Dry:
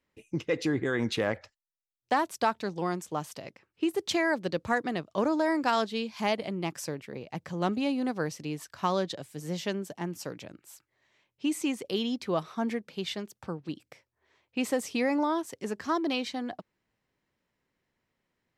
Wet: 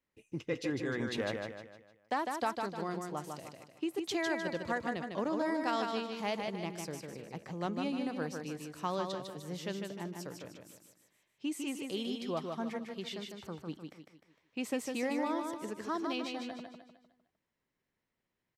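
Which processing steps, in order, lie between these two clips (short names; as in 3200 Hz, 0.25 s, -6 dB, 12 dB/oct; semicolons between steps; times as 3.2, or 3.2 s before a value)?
feedback echo 0.152 s, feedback 42%, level -4.5 dB; gain -7.5 dB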